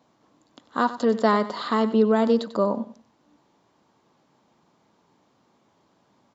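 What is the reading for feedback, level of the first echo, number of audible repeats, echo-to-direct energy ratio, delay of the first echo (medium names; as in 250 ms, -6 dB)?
25%, -14.5 dB, 2, -14.0 dB, 95 ms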